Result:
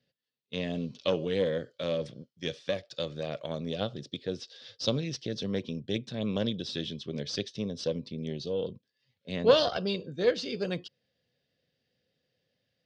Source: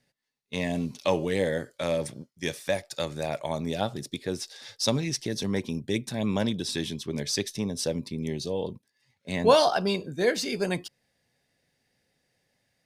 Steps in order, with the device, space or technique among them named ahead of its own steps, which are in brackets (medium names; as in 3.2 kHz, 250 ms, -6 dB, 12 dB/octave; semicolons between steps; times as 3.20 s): guitar amplifier (valve stage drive 11 dB, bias 0.75; tone controls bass +4 dB, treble +7 dB; cabinet simulation 75–4600 Hz, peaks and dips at 500 Hz +8 dB, 870 Hz -9 dB, 2.1 kHz -5 dB, 3.1 kHz +6 dB); trim -2.5 dB